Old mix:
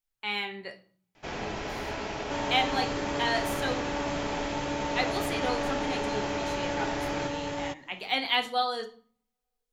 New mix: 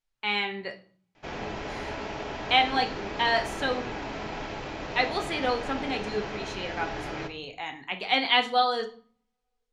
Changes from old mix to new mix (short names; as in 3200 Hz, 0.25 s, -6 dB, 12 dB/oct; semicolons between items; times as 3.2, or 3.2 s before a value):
speech +5.0 dB; second sound: muted; master: add air absorption 72 m